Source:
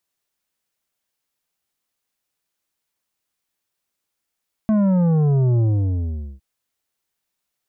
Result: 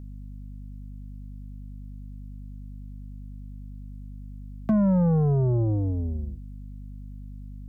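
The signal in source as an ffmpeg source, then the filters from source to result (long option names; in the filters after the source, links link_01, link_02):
-f lavfi -i "aevalsrc='0.178*clip((1.71-t)/0.8,0,1)*tanh(2.82*sin(2*PI*220*1.71/log(65/220)*(exp(log(65/220)*t/1.71)-1)))/tanh(2.82)':duration=1.71:sample_rate=44100"
-filter_complex "[0:a]acrossover=split=160|320[link_01][link_02][link_03];[link_01]acompressor=threshold=-29dB:ratio=4[link_04];[link_02]acompressor=threshold=-24dB:ratio=4[link_05];[link_03]acompressor=threshold=-30dB:ratio=4[link_06];[link_04][link_05][link_06]amix=inputs=3:normalize=0,asoftclip=type=hard:threshold=-15.5dB,aeval=exprs='val(0)+0.0126*(sin(2*PI*50*n/s)+sin(2*PI*2*50*n/s)/2+sin(2*PI*3*50*n/s)/3+sin(2*PI*4*50*n/s)/4+sin(2*PI*5*50*n/s)/5)':channel_layout=same"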